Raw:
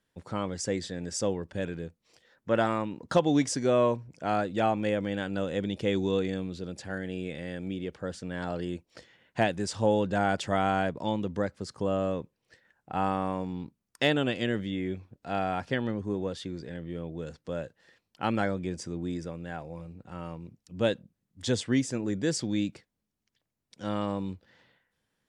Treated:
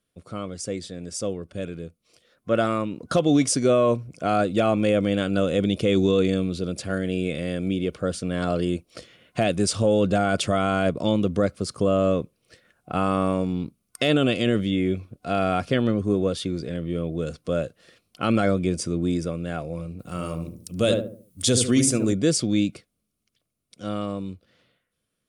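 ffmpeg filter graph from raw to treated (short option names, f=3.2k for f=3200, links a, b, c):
-filter_complex "[0:a]asettb=1/sr,asplit=3[a][b][c];[a]atrim=end=19.994[d];[b]atrim=start=19.99:end=22.13,asetpts=PTS-STARTPTS,afade=t=in:d=0.004:c=qsin,afade=t=out:st=2.136:d=0.004:c=qsin,aemphasis=mode=production:type=50fm,asplit=2[e][f];[f]adelay=73,lowpass=f=840:p=1,volume=-5dB,asplit=2[g][h];[h]adelay=73,lowpass=f=840:p=1,volume=0.4,asplit=2[i][j];[j]adelay=73,lowpass=f=840:p=1,volume=0.4,asplit=2[k][l];[l]adelay=73,lowpass=f=840:p=1,volume=0.4,asplit=2[m][n];[n]adelay=73,lowpass=f=840:p=1,volume=0.4[o];[e][g][i][k][m][o]amix=inputs=6:normalize=0,atrim=end_sample=94374[p];[c]atrim=start=22.126[q];[d][p]acrossfade=d=0.004:c1=hsin:c2=qsin[r];[r][q]acrossfade=d=0.004:c1=qsin:c2=hsin,superequalizer=9b=0.316:11b=0.447:16b=2.24,dynaudnorm=f=670:g=9:m=11.5dB,alimiter=limit=-10dB:level=0:latency=1:release=14"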